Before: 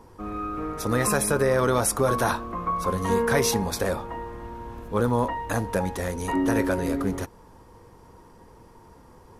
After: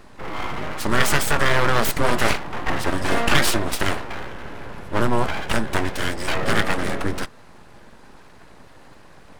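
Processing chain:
octave-band graphic EQ 125/250/2,000/4,000 Hz +8/−3/+11/+5 dB
formants moved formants −3 semitones
full-wave rectification
level +3.5 dB

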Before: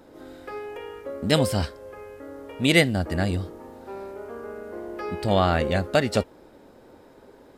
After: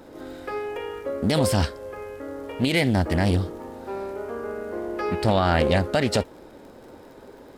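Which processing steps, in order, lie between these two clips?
brickwall limiter −15.5 dBFS, peak gain reduction 11.5 dB
surface crackle 63 per second −48 dBFS
highs frequency-modulated by the lows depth 0.21 ms
level +5 dB

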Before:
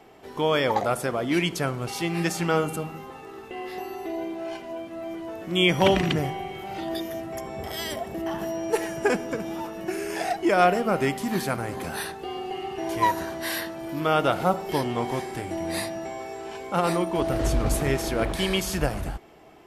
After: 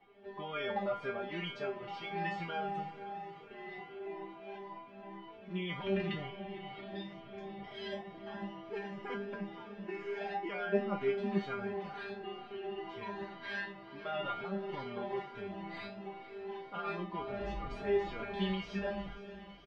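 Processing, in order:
low-pass filter 3,500 Hz 24 dB per octave
brickwall limiter −16 dBFS, peak gain reduction 7.5 dB
tuned comb filter 200 Hz, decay 0.29 s, harmonics all, mix 100%
on a send: feedback delay with all-pass diffusion 516 ms, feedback 66%, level −15 dB
on the sum: barber-pole flanger 3.6 ms −2.1 Hz
level +5.5 dB

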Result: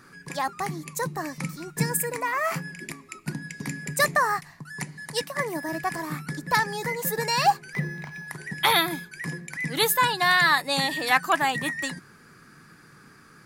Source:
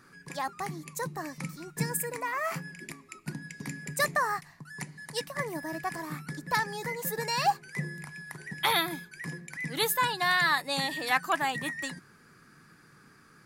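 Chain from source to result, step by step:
0:05.22–0:05.69: high-pass filter 160 Hz
0:07.73–0:08.28: linearly interpolated sample-rate reduction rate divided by 4×
level +5.5 dB

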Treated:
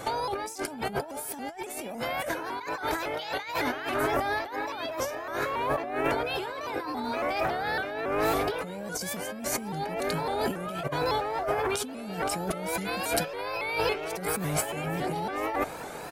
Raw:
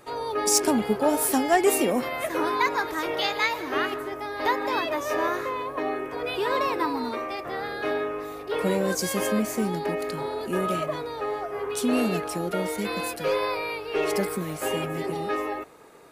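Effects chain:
comb filter 1.3 ms, depth 45%
compressor whose output falls as the input rises −37 dBFS, ratio −1
pitch modulation by a square or saw wave saw up 3.6 Hz, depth 160 cents
level +4.5 dB

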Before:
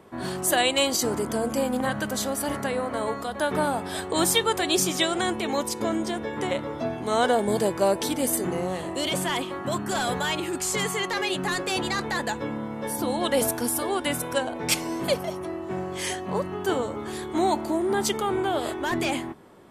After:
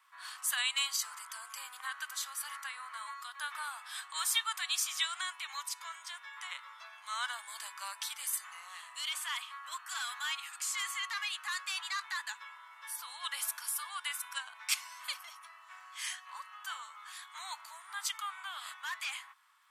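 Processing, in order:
surface crackle 150 per second −55 dBFS
elliptic high-pass filter 1,100 Hz, stop band 70 dB
level −7 dB

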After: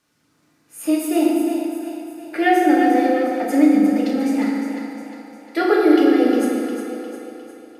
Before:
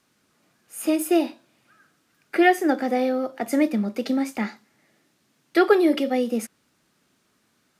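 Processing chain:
echo with a time of its own for lows and highs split 450 Hz, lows 90 ms, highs 355 ms, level −8 dB
feedback delay network reverb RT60 2.4 s, low-frequency decay 1.1×, high-frequency decay 0.6×, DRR −4 dB
level −3.5 dB

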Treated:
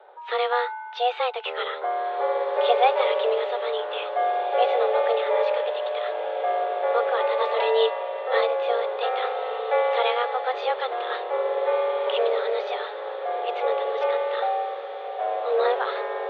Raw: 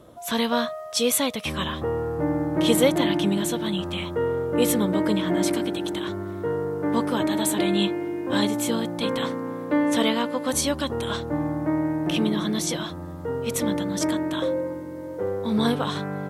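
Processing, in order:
0:07.40–0:08.39: comb filter 4.5 ms, depth 89%
feedback delay with all-pass diffusion 1,941 ms, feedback 57%, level −10.5 dB
single-sideband voice off tune +250 Hz 160–3,100 Hz

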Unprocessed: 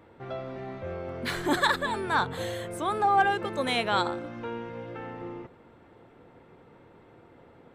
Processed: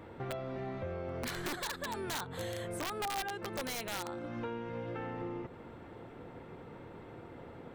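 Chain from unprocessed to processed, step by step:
low-shelf EQ 230 Hz +3 dB
downward compressor 5 to 1, threshold −41 dBFS, peak gain reduction 21 dB
wrap-around overflow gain 33.5 dB
level +4 dB

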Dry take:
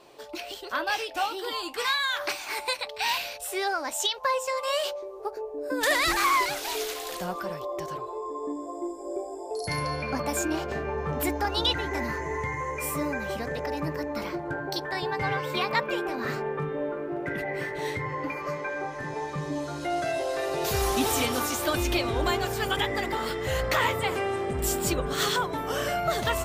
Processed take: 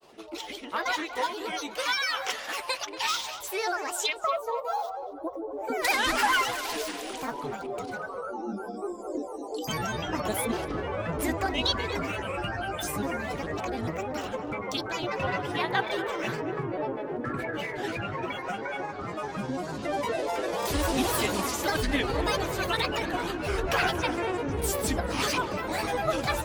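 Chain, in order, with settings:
gain on a spectral selection 0:04.18–0:05.51, 1,100–12,000 Hz −17 dB
granular cloud, spray 15 ms, pitch spread up and down by 7 semitones
feedback echo with a low-pass in the loop 235 ms, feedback 37%, low-pass 2,900 Hz, level −12 dB

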